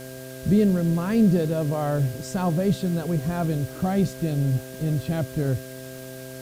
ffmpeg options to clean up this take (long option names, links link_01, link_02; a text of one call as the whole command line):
ffmpeg -i in.wav -af "adeclick=threshold=4,bandreject=frequency=130:width_type=h:width=4,bandreject=frequency=260:width_type=h:width=4,bandreject=frequency=390:width_type=h:width=4,bandreject=frequency=520:width_type=h:width=4,bandreject=frequency=650:width_type=h:width=4,bandreject=frequency=1600:width=30,afwtdn=0.0056" out.wav